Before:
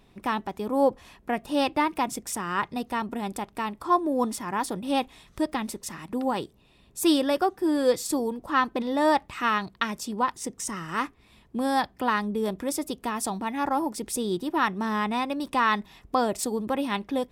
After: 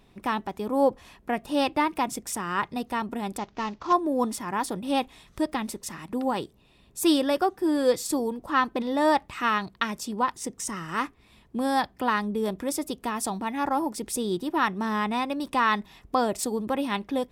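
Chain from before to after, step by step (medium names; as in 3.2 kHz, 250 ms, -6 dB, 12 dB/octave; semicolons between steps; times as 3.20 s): 3.38–3.93 s: CVSD coder 32 kbps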